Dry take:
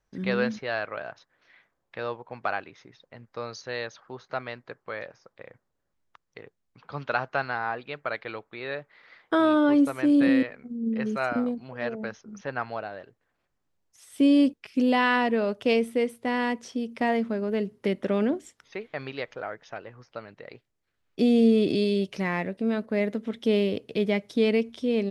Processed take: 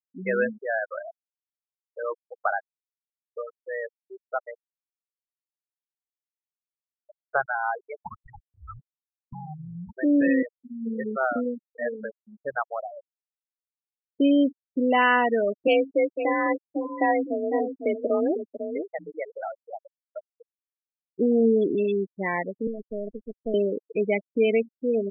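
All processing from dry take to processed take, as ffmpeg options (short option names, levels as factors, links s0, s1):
-filter_complex "[0:a]asettb=1/sr,asplit=3[s0][s1][s2];[s0]atrim=end=4.634[s3];[s1]atrim=start=4.63:end=7.25,asetpts=PTS-STARTPTS,afade=t=in:d=0.004:c=qsin,afade=t=out:st=2.616:d=0.004:c=qsin,aphaser=in_gain=1:out_gain=1:delay=1.7:decay=0.57:speed=1.8:type=triangular,acompressor=threshold=0.0158:ratio=20:attack=3.2:release=140:knee=1:detection=peak,bandpass=f=320:t=q:w=0.66[s4];[s2]atrim=start=7.246[s5];[s3][s4]acrossfade=d=0.004:c1=hsin:c2=qsin[s6];[s6][s5]acrossfade=d=0.004:c1=qsin:c2=hsin,asettb=1/sr,asplit=3[s7][s8][s9];[s7]atrim=end=8.004[s10];[s8]atrim=start=8:end=9.97,asetpts=PTS-STARTPTS,afade=t=in:d=0.004:c=qsin,afade=t=out:st=1.966:d=0.004:c=qsin,lowpass=f=3200:p=1,acompressor=threshold=0.0398:ratio=16:attack=3.2:release=140:knee=1:detection=peak,afreqshift=-460[s11];[s9]atrim=start=9.966[s12];[s10][s11]acrossfade=d=0.004:c1=hsin:c2=qsin[s13];[s13][s12]acrossfade=d=0.004:c1=qsin:c2=hsin,asettb=1/sr,asplit=3[s14][s15][s16];[s14]atrim=end=15.674[s17];[s15]atrim=start=15.67:end=20.38,asetpts=PTS-STARTPTS,afade=t=in:d=0.004:c=qsin,afade=t=out:st=4.706:d=0.004:c=qsin,afreqshift=40,aecho=1:1:501:0.398,atrim=end_sample=207711[s18];[s16]atrim=start=20.376[s19];[s17][s18]acrossfade=d=0.004:c1=hsin:c2=qsin[s20];[s20][s19]acrossfade=d=0.004:c1=qsin:c2=hsin,asettb=1/sr,asplit=3[s21][s22][s23];[s21]atrim=end=22.674[s24];[s22]atrim=start=22.67:end=23.54,asetpts=PTS-STARTPTS,afade=t=in:d=0.004:c=qsin,afade=t=out:st=0.866:d=0.004:c=qsin,equalizer=f=570:w=1.4:g=2.5,acrossover=split=290|3000[s25][s26][s27];[s26]acompressor=threshold=0.0282:ratio=4:attack=3.2:release=140:knee=2.83:detection=peak[s28];[s25][s28][s27]amix=inputs=3:normalize=0,aeval=exprs='max(val(0),0)':c=same[s29];[s23]atrim=start=23.536[s30];[s24][s29]acrossfade=d=0.004:c1=hsin:c2=qsin[s31];[s31][s30]acrossfade=d=0.004:c1=qsin:c2=hsin,agate=range=0.0224:threshold=0.00562:ratio=3:detection=peak,afftfilt=real='re*gte(hypot(re,im),0.0891)':imag='im*gte(hypot(re,im),0.0891)':win_size=1024:overlap=0.75,bass=f=250:g=-12,treble=f=4000:g=-5,volume=1.58"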